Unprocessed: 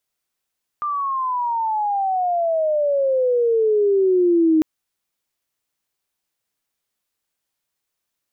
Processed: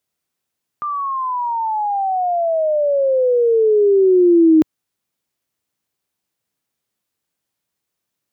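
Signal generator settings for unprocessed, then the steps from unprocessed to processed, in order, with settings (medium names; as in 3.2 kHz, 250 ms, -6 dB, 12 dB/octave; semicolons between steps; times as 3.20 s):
sweep logarithmic 1.2 kHz -> 310 Hz -20.5 dBFS -> -12 dBFS 3.80 s
high-pass 91 Hz; bass shelf 370 Hz +9 dB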